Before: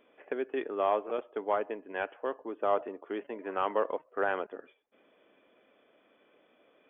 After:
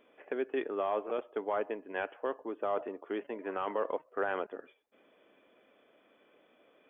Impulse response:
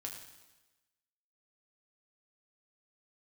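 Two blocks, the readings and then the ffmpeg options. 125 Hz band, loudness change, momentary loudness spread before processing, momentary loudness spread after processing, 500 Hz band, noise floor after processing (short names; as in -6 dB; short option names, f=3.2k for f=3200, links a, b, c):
n/a, -2.5 dB, 9 LU, 5 LU, -2.0 dB, -67 dBFS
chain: -af "alimiter=limit=-22.5dB:level=0:latency=1:release=11"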